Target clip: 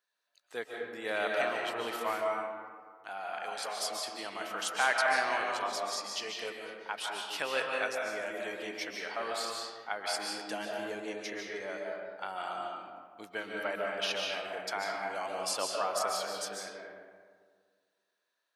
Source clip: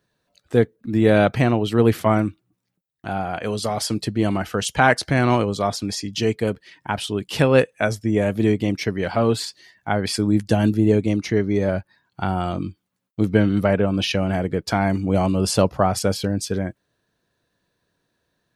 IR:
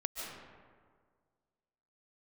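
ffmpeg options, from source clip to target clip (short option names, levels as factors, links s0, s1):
-filter_complex "[0:a]highpass=910[s0];[1:a]atrim=start_sample=2205[s1];[s0][s1]afir=irnorm=-1:irlink=0,volume=0.398"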